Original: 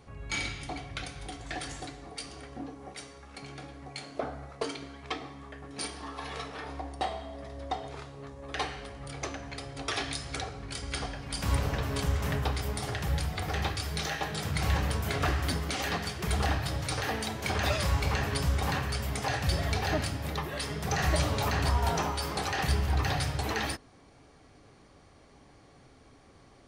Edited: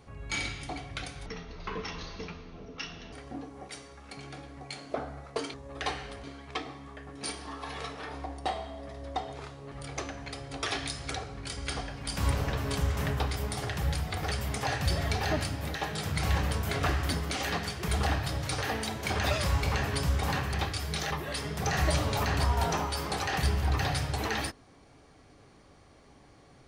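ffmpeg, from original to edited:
-filter_complex "[0:a]asplit=10[a][b][c][d][e][f][g][h][i][j];[a]atrim=end=1.264[k];[b]atrim=start=1.26:end=2.38,asetpts=PTS-STARTPTS,asetrate=26460,aresample=44100[l];[c]atrim=start=2.376:end=4.792[m];[d]atrim=start=8.268:end=8.972[n];[e]atrim=start=4.788:end=8.272[o];[f]atrim=start=8.968:end=13.572[p];[g]atrim=start=18.928:end=20.362[q];[h]atrim=start=14.138:end=18.932[r];[i]atrim=start=13.568:end=14.142[s];[j]atrim=start=20.358[t];[k][l]acrossfade=d=0.004:c1=hsin:c2=hsin[u];[u][m]acrossfade=d=0.004:c1=hsin:c2=hsin[v];[v][n]acrossfade=d=0.004:c1=hsin:c2=hsin[w];[w][o]acrossfade=d=0.004:c1=hsin:c2=hsin[x];[x][p]acrossfade=d=0.004:c1=hsin:c2=hsin[y];[y][q]acrossfade=d=0.004:c1=hsin:c2=hsin[z];[z][r]acrossfade=d=0.004:c1=hsin:c2=hsin[aa];[aa][s]acrossfade=d=0.004:c1=hsin:c2=hsin[ab];[ab][t]acrossfade=d=0.004:c1=hsin:c2=hsin"

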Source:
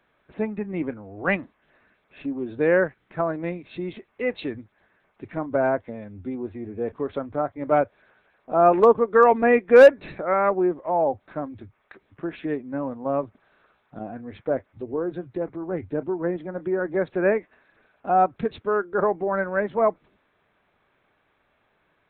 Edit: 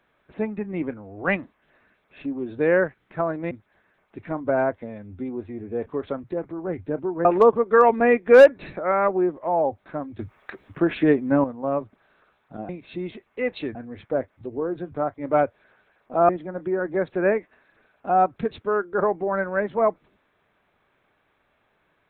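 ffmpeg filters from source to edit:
-filter_complex "[0:a]asplit=10[a][b][c][d][e][f][g][h][i][j];[a]atrim=end=3.512[k];[b]atrim=start=4.568:end=7.302[l];[c]atrim=start=15.278:end=16.292[m];[d]atrim=start=8.668:end=11.612[n];[e]atrim=start=11.608:end=12.862,asetpts=PTS-STARTPTS,volume=9.5dB[o];[f]atrim=start=12.858:end=14.112[p];[g]atrim=start=3.508:end=4.572[q];[h]atrim=start=14.108:end=15.282[r];[i]atrim=start=7.298:end=8.672[s];[j]atrim=start=16.288[t];[k][l]acrossfade=d=0.004:c1=hsin:c2=hsin[u];[u][m]acrossfade=d=0.004:c1=hsin:c2=hsin[v];[v][n]acrossfade=d=0.004:c1=hsin:c2=hsin[w];[w][o]acrossfade=d=0.004:c1=hsin:c2=hsin[x];[x][p]acrossfade=d=0.004:c1=hsin:c2=hsin[y];[y][q]acrossfade=d=0.004:c1=hsin:c2=hsin[z];[z][r]acrossfade=d=0.004:c1=hsin:c2=hsin[aa];[aa][s]acrossfade=d=0.004:c1=hsin:c2=hsin[ab];[ab][t]acrossfade=d=0.004:c1=hsin:c2=hsin"

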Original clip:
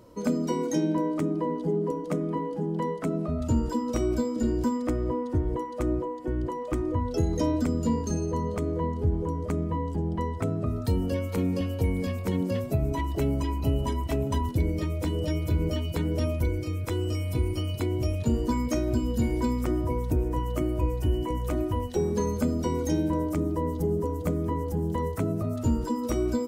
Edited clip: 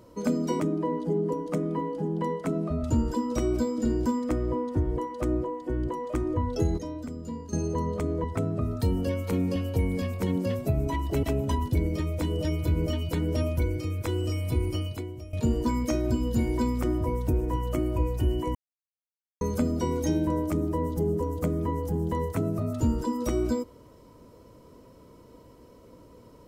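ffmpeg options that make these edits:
-filter_complex "[0:a]asplit=9[a][b][c][d][e][f][g][h][i];[a]atrim=end=0.602[j];[b]atrim=start=1.178:end=7.362[k];[c]atrim=start=7.358:end=8.112,asetpts=PTS-STARTPTS,volume=-10.5dB[l];[d]atrim=start=8.108:end=8.822[m];[e]atrim=start=10.288:end=13.282[n];[f]atrim=start=14.058:end=18.16,asetpts=PTS-STARTPTS,afade=t=out:st=3.562:d=0.54:c=qua:silence=0.16788[o];[g]atrim=start=18.16:end=21.38,asetpts=PTS-STARTPTS,afade=t=in:d=0.004:c=hsin:silence=0.16788,afade=t=out:st=3.216:d=0.004:c=hsin[p];[h]atrim=start=21.38:end=22.24,asetpts=PTS-STARTPTS,volume=0[q];[i]atrim=start=22.24,asetpts=PTS-STARTPTS,afade=t=in:d=0.004:c=hsin[r];[j][k]acrossfade=d=0.004:c1=hsin:c2=hsin[s];[s][l]acrossfade=d=0.004:c1=hsin:c2=hsin[t];[t][m]acrossfade=d=0.004:c1=hsin:c2=hsin[u];[u][n]acrossfade=d=0.004:c1=hsin:c2=hsin[v];[o][p][q][r]concat=n=4:v=0:a=1[w];[v][w]acrossfade=d=0.004:c1=hsin:c2=hsin"

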